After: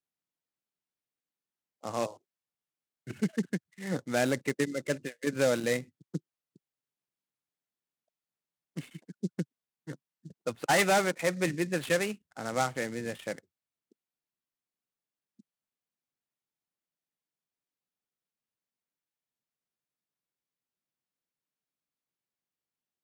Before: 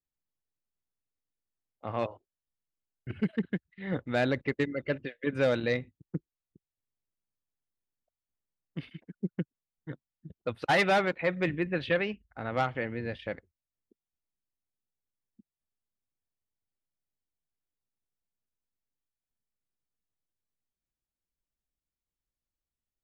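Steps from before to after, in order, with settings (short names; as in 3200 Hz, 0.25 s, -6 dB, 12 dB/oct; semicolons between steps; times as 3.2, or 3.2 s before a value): HPF 130 Hz 24 dB/oct; noise-modulated delay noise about 5400 Hz, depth 0.036 ms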